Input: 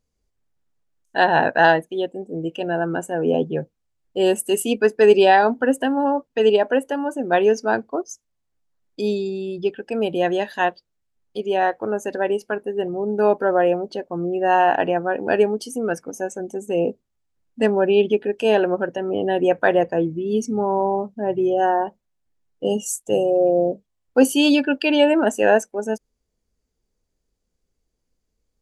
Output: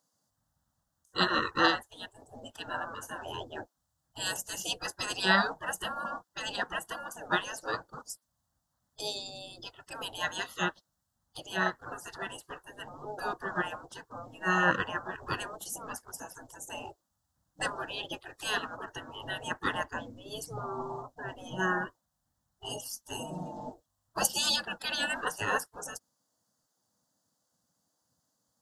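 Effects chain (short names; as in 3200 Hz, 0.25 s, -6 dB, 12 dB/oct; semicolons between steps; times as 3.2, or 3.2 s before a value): fixed phaser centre 980 Hz, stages 4; spectral gate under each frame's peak -20 dB weak; gain +8.5 dB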